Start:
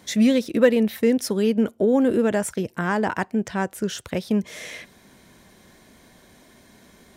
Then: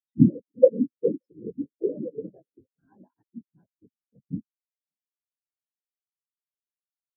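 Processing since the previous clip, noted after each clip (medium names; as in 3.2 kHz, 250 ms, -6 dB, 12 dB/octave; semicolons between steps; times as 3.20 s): whisper effect; delay 575 ms -19 dB; spectral contrast expander 4:1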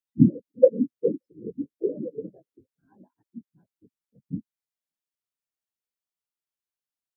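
de-esser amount 90%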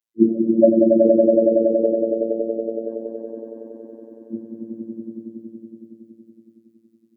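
on a send: echo with a slow build-up 93 ms, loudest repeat 5, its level -3.5 dB; on the sum: frequency shift +66 Hz; robot voice 113 Hz; trim +3 dB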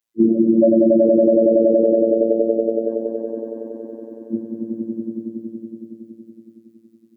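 peak limiter -11.5 dBFS, peak gain reduction 9.5 dB; trim +6 dB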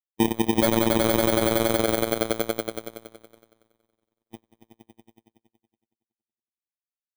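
bit-reversed sample order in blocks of 16 samples; power-law waveshaper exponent 3; trim -2 dB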